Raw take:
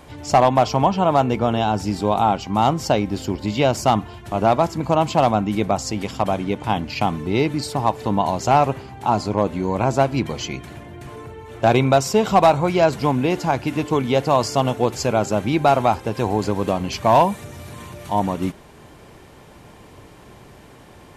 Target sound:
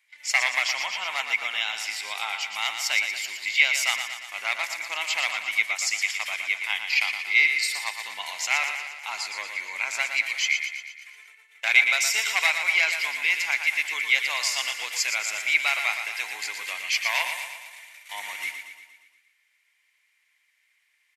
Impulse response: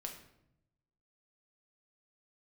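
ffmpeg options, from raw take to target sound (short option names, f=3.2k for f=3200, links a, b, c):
-filter_complex "[0:a]agate=range=-22dB:threshold=-34dB:ratio=16:detection=peak,highpass=f=2.1k:t=q:w=8.1,highshelf=f=3.6k:g=9.5,asplit=2[a][b];[b]aecho=0:1:117|234|351|468|585|702|819:0.422|0.236|0.132|0.0741|0.0415|0.0232|0.013[c];[a][c]amix=inputs=2:normalize=0,volume=-5.5dB"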